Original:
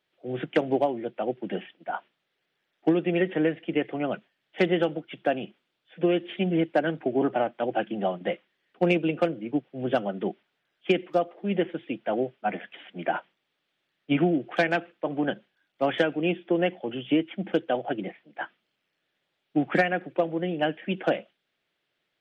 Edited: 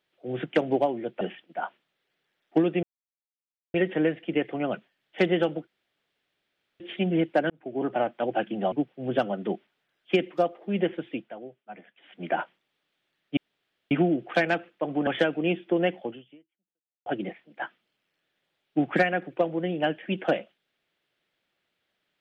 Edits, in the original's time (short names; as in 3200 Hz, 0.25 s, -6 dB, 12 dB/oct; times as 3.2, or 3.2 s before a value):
1.21–1.52 cut
3.14 insert silence 0.91 s
5.07–6.2 room tone
6.9–7.43 fade in
8.12–9.48 cut
11.89–12.98 dip -15 dB, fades 0.22 s
14.13 insert room tone 0.54 s
15.29–15.86 cut
16.85–17.85 fade out exponential